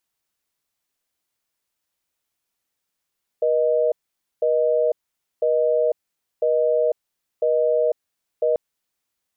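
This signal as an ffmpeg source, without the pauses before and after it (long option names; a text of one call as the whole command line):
ffmpeg -f lavfi -i "aevalsrc='0.112*(sin(2*PI*480*t)+sin(2*PI*620*t))*clip(min(mod(t,1),0.5-mod(t,1))/0.005,0,1)':duration=5.14:sample_rate=44100" out.wav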